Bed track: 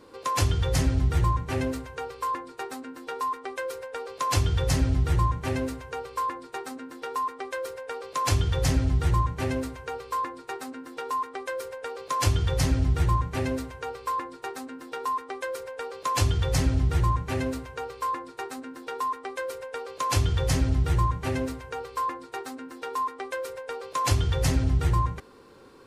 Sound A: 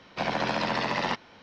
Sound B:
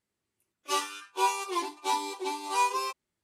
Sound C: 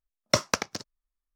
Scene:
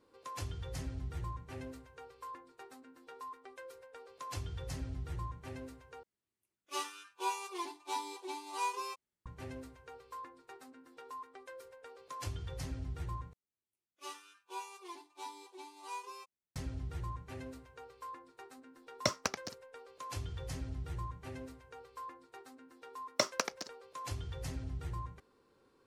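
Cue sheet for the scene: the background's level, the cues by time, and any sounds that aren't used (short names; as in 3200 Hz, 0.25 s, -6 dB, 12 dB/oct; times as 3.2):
bed track -17.5 dB
6.03 replace with B -9.5 dB
13.33 replace with B -17.5 dB
18.72 add C -9 dB
22.86 add C -7.5 dB + HPF 260 Hz
not used: A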